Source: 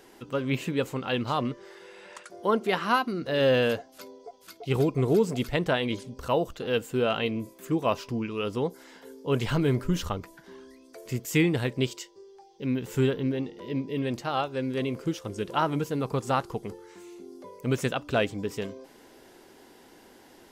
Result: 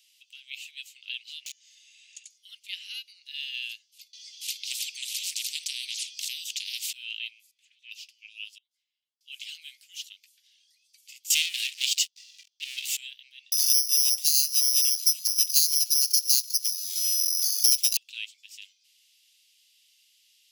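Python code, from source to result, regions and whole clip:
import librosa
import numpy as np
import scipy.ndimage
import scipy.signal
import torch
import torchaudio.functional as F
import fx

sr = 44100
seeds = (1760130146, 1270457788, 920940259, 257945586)

y = fx.chain(x, sr, fx.overflow_wrap(gain_db=28.0),
    fx.peak_eq(hz=6700.0, db=14.5, octaves=0.22), at=(1.46, 2.38))
y = fx.chain(y, sr, fx.weighting(curve='A'),
    fx.spectral_comp(ratio=10.0), at=(4.13, 6.93))
y = fx.chain(y, sr, fx.spacing_loss(db_at_10k=22),
    fx.doppler_dist(depth_ms=0.29), at=(7.51, 7.91))
y = fx.chain(y, sr, fx.bandpass_q(hz=120.0, q=0.94),
    fx.sustainer(db_per_s=140.0), at=(8.58, 9.21))
y = fx.chain(y, sr, fx.highpass(hz=200.0, slope=12),
    fx.low_shelf(hz=370.0, db=9.0),
    fx.leveller(passes=5), at=(11.3, 12.97))
y = fx.chain(y, sr, fx.echo_banded(ms=150, feedback_pct=85, hz=2200.0, wet_db=-24),
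    fx.resample_bad(factor=8, down='filtered', up='zero_stuff'),
    fx.band_squash(depth_pct=100), at=(13.52, 17.97))
y = scipy.signal.sosfilt(scipy.signal.butter(8, 2600.0, 'highpass', fs=sr, output='sos'), y)
y = fx.high_shelf(y, sr, hz=6700.0, db=-6.5)
y = y * 10.0 ** (1.5 / 20.0)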